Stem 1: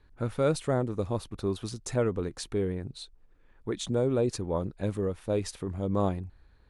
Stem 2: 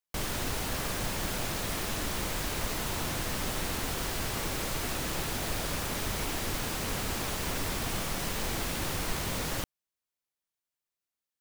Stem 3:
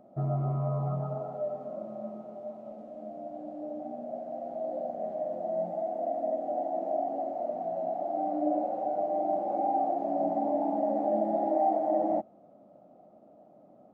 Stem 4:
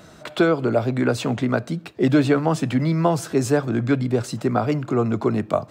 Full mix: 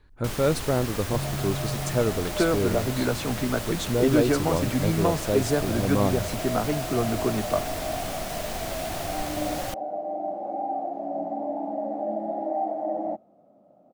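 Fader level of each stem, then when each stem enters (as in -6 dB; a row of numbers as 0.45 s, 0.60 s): +3.0 dB, -1.0 dB, -1.5 dB, -5.5 dB; 0.00 s, 0.10 s, 0.95 s, 2.00 s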